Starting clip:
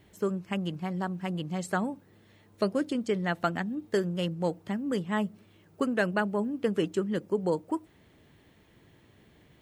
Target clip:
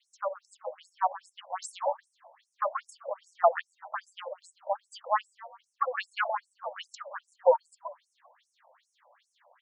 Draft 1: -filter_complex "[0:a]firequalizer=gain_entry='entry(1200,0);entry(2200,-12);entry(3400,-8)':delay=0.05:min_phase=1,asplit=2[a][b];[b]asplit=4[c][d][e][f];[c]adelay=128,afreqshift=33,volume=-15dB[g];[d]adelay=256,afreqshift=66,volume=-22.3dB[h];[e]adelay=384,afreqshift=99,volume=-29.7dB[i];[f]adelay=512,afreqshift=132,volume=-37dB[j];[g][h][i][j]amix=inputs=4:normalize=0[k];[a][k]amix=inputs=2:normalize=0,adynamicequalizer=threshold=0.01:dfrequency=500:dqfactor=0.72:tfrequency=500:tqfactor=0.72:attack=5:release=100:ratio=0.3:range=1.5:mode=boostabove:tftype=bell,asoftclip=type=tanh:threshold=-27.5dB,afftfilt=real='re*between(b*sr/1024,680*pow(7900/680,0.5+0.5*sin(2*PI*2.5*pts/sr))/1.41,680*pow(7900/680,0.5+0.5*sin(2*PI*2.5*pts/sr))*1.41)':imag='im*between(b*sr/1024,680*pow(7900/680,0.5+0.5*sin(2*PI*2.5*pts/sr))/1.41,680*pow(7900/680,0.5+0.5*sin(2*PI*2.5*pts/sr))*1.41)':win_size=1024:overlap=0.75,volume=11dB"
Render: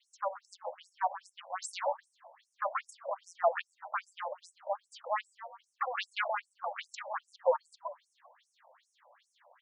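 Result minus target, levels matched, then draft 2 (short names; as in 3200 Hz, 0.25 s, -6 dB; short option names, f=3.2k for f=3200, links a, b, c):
soft clip: distortion +12 dB
-filter_complex "[0:a]firequalizer=gain_entry='entry(1200,0);entry(2200,-12);entry(3400,-8)':delay=0.05:min_phase=1,asplit=2[a][b];[b]asplit=4[c][d][e][f];[c]adelay=128,afreqshift=33,volume=-15dB[g];[d]adelay=256,afreqshift=66,volume=-22.3dB[h];[e]adelay=384,afreqshift=99,volume=-29.7dB[i];[f]adelay=512,afreqshift=132,volume=-37dB[j];[g][h][i][j]amix=inputs=4:normalize=0[k];[a][k]amix=inputs=2:normalize=0,adynamicequalizer=threshold=0.01:dfrequency=500:dqfactor=0.72:tfrequency=500:tqfactor=0.72:attack=5:release=100:ratio=0.3:range=1.5:mode=boostabove:tftype=bell,asoftclip=type=tanh:threshold=-16.5dB,afftfilt=real='re*between(b*sr/1024,680*pow(7900/680,0.5+0.5*sin(2*PI*2.5*pts/sr))/1.41,680*pow(7900/680,0.5+0.5*sin(2*PI*2.5*pts/sr))*1.41)':imag='im*between(b*sr/1024,680*pow(7900/680,0.5+0.5*sin(2*PI*2.5*pts/sr))/1.41,680*pow(7900/680,0.5+0.5*sin(2*PI*2.5*pts/sr))*1.41)':win_size=1024:overlap=0.75,volume=11dB"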